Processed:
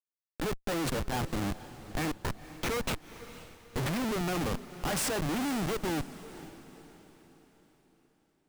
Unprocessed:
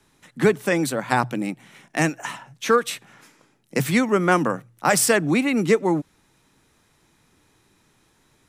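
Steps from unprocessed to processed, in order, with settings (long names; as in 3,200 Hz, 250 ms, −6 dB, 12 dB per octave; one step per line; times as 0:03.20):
comparator with hysteresis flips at −25.5 dBFS
feedback delay with all-pass diffusion 500 ms, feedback 44%, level −15 dB
level −7 dB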